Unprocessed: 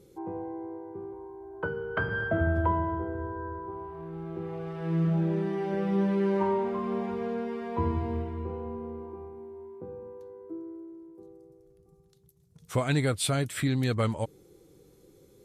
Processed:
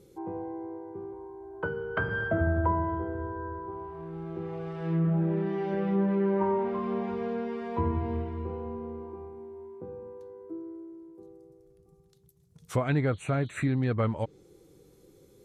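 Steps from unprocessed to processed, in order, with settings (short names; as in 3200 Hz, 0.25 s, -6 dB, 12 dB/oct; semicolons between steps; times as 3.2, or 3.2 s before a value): treble ducked by the level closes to 1900 Hz, closed at -22.5 dBFS; spectral repair 13.15–13.62, 2900–5900 Hz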